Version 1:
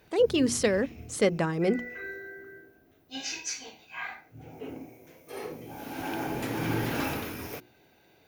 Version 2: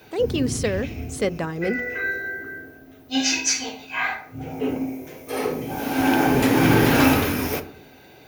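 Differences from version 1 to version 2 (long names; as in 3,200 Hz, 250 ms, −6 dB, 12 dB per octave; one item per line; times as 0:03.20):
background +9.5 dB
reverb: on, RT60 0.60 s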